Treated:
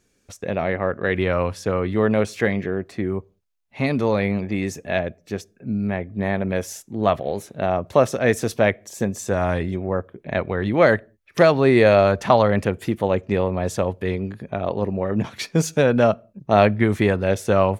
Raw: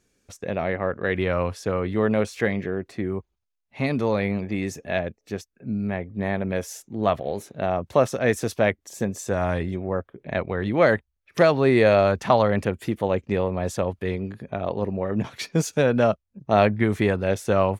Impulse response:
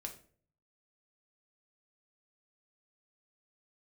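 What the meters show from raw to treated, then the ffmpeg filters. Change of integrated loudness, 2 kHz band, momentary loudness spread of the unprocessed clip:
+3.0 dB, +2.5 dB, 11 LU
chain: -filter_complex "[0:a]asplit=2[a][b];[1:a]atrim=start_sample=2205,afade=t=out:st=0.26:d=0.01,atrim=end_sample=11907[c];[b][c]afir=irnorm=-1:irlink=0,volume=-16.5dB[d];[a][d]amix=inputs=2:normalize=0,volume=2dB"

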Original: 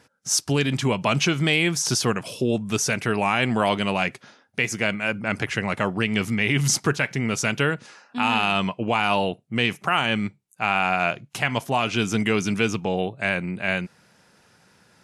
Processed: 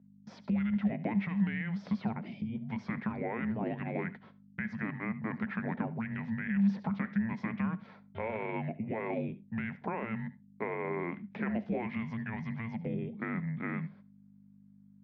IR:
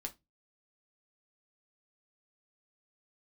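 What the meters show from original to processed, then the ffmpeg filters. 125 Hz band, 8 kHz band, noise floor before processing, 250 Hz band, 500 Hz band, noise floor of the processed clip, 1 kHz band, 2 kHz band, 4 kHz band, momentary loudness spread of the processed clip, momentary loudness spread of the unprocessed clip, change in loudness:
-10.0 dB, under -40 dB, -60 dBFS, -6.5 dB, -14.0 dB, -59 dBFS, -16.5 dB, -16.5 dB, under -30 dB, 8 LU, 5 LU, -12.0 dB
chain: -filter_complex "[0:a]afreqshift=-340,aemphasis=mode=reproduction:type=75kf,agate=range=-28dB:threshold=-47dB:ratio=16:detection=peak,alimiter=limit=-15dB:level=0:latency=1:release=12,acompressor=threshold=-26dB:ratio=6,aeval=exprs='val(0)+0.00355*(sin(2*PI*50*n/s)+sin(2*PI*2*50*n/s)/2+sin(2*PI*3*50*n/s)/3+sin(2*PI*4*50*n/s)/4+sin(2*PI*5*50*n/s)/5)':c=same,highpass=f=130:w=0.5412,highpass=f=130:w=1.3066,equalizer=f=130:t=q:w=4:g=-7,equalizer=f=200:t=q:w=4:g=7,equalizer=f=330:t=q:w=4:g=-3,equalizer=f=1.2k:t=q:w=4:g=-10,equalizer=f=2.8k:t=q:w=4:g=-8,lowpass=f=3.3k:w=0.5412,lowpass=f=3.3k:w=1.3066,asplit=2[a][b];[1:a]atrim=start_sample=2205,adelay=70[c];[b][c]afir=irnorm=-1:irlink=0,volume=-16.5dB[d];[a][d]amix=inputs=2:normalize=0,acrossover=split=2600[e][f];[f]acompressor=threshold=-58dB:ratio=4:attack=1:release=60[g];[e][g]amix=inputs=2:normalize=0,volume=-3dB"

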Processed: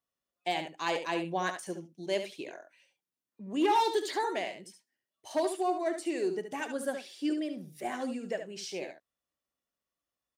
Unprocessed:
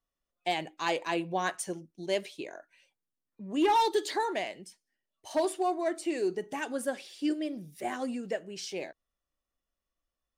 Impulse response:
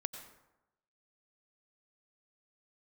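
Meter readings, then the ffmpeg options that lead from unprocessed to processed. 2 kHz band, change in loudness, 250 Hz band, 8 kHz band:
-1.0 dB, -1.0 dB, -1.0 dB, -2.5 dB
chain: -filter_complex "[0:a]highpass=100,deesser=0.7,asplit=2[a][b];[b]aecho=0:1:72:0.376[c];[a][c]amix=inputs=2:normalize=0,volume=-1.5dB"

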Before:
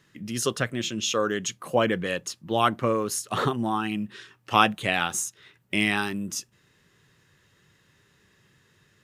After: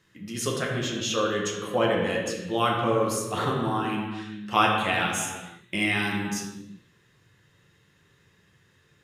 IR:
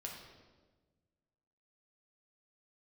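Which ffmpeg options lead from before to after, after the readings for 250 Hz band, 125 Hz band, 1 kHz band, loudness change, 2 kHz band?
0.0 dB, +1.5 dB, 0.0 dB, 0.0 dB, 0.0 dB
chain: -filter_complex "[1:a]atrim=start_sample=2205,afade=t=out:st=0.43:d=0.01,atrim=end_sample=19404,asetrate=32193,aresample=44100[a];[0:a][a]afir=irnorm=-1:irlink=0"

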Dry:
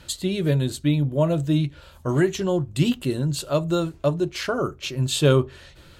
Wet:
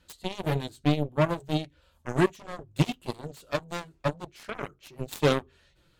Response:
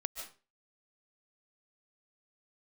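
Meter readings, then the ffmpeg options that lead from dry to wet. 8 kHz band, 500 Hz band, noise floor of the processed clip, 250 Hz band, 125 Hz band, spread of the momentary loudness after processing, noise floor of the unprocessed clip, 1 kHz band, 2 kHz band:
-13.0 dB, -6.5 dB, -66 dBFS, -7.5 dB, -8.5 dB, 15 LU, -50 dBFS, -0.5 dB, -2.5 dB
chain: -af "flanger=delay=3.9:depth=3.3:regen=-44:speed=0.56:shape=sinusoidal,aeval=exprs='0.316*(cos(1*acos(clip(val(0)/0.316,-1,1)))-cos(1*PI/2))+0.0562*(cos(7*acos(clip(val(0)/0.316,-1,1)))-cos(7*PI/2))':c=same"

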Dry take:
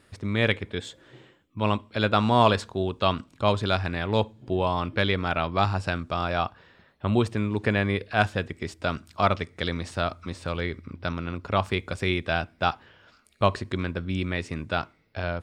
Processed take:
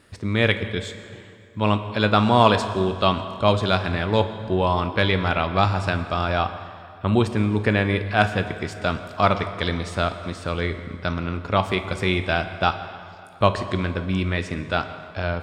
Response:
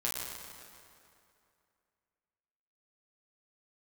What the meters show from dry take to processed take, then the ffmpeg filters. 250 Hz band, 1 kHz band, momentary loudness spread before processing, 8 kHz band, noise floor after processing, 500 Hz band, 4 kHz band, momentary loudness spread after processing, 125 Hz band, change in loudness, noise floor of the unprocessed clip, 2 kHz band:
+4.5 dB, +4.0 dB, 9 LU, +4.0 dB, -44 dBFS, +4.0 dB, +4.0 dB, 9 LU, +4.5 dB, +4.0 dB, -61 dBFS, +4.0 dB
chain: -filter_complex "[0:a]asplit=2[a][b];[1:a]atrim=start_sample=2205[c];[b][c]afir=irnorm=-1:irlink=0,volume=-10.5dB[d];[a][d]amix=inputs=2:normalize=0,volume=1.5dB"

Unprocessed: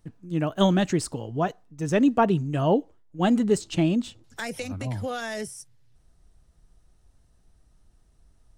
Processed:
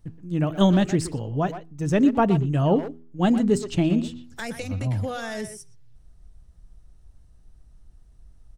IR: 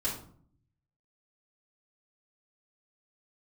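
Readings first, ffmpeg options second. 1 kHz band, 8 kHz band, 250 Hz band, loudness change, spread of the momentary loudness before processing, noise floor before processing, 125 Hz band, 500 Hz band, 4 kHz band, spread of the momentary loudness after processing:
-0.5 dB, -1.0 dB, +2.5 dB, +2.0 dB, 13 LU, -61 dBFS, +4.0 dB, +0.5 dB, -1.0 dB, 15 LU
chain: -filter_complex "[0:a]lowshelf=f=160:g=11,bandreject=f=81.42:t=h:w=4,bandreject=f=162.84:t=h:w=4,bandreject=f=244.26:t=h:w=4,bandreject=f=325.68:t=h:w=4,bandreject=f=407.1:t=h:w=4,asplit=2[a][b];[b]adelay=120,highpass=300,lowpass=3.4k,asoftclip=type=hard:threshold=-18dB,volume=-10dB[c];[a][c]amix=inputs=2:normalize=0,volume=-1dB"

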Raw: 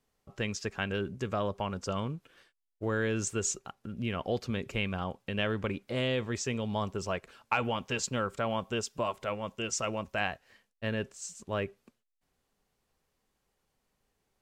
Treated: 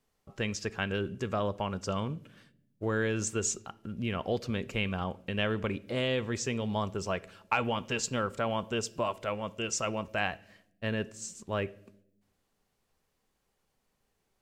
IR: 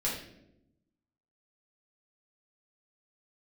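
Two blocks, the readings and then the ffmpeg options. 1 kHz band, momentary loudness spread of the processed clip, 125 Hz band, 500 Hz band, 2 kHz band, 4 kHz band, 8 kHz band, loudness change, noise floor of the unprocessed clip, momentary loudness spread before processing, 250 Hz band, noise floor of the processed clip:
+0.5 dB, 7 LU, +0.5 dB, +0.5 dB, +0.5 dB, +0.5 dB, +0.5 dB, +0.5 dB, -80 dBFS, 7 LU, +1.0 dB, -78 dBFS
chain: -filter_complex "[0:a]asplit=2[a][b];[1:a]atrim=start_sample=2205[c];[b][c]afir=irnorm=-1:irlink=0,volume=-22dB[d];[a][d]amix=inputs=2:normalize=0"

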